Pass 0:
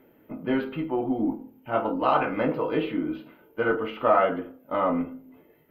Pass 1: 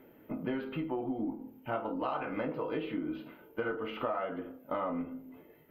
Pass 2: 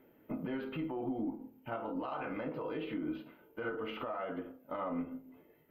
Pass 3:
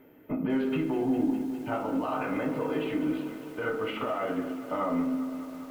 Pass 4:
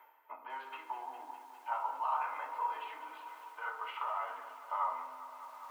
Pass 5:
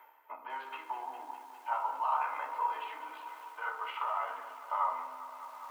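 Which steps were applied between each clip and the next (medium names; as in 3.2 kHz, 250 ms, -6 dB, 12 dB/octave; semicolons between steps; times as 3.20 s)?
compression 6:1, threshold -32 dBFS, peak gain reduction 16 dB
peak limiter -30.5 dBFS, peak gain reduction 10 dB; upward expansion 1.5:1, over -51 dBFS; trim +2 dB
on a send at -4.5 dB: reverberation RT60 0.65 s, pre-delay 3 ms; on the sum: bit-crushed delay 203 ms, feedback 80%, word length 9-bit, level -12.5 dB; trim +6.5 dB
reverse; upward compressor, threshold -33 dBFS; reverse; ladder high-pass 900 Hz, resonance 80%; trim +2.5 dB
AM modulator 66 Hz, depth 15%; trim +4 dB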